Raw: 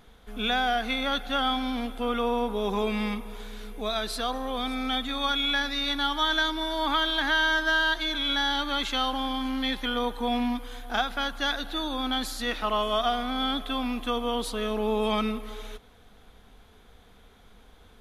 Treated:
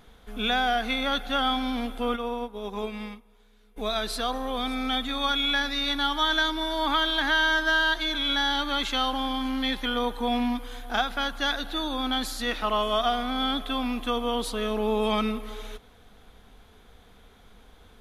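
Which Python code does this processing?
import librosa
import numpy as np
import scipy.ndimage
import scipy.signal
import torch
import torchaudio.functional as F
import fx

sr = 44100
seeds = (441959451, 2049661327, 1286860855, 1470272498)

y = fx.upward_expand(x, sr, threshold_db=-36.0, expansion=2.5, at=(2.15, 3.76), fade=0.02)
y = y * librosa.db_to_amplitude(1.0)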